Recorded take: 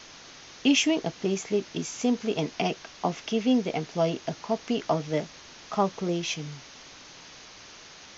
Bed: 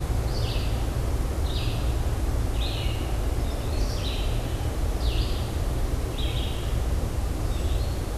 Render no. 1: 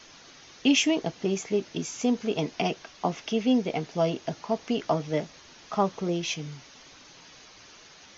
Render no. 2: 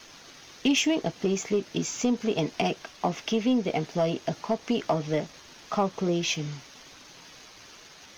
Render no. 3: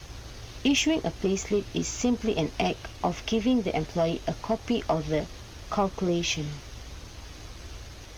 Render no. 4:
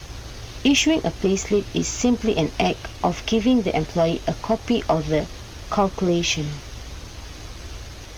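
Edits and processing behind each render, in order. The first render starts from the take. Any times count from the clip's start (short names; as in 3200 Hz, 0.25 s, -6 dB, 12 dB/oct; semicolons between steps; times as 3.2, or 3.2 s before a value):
denoiser 6 dB, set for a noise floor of -48 dBFS
compressor 2:1, threshold -26 dBFS, peak gain reduction 5.5 dB; sample leveller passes 1
add bed -17 dB
gain +6 dB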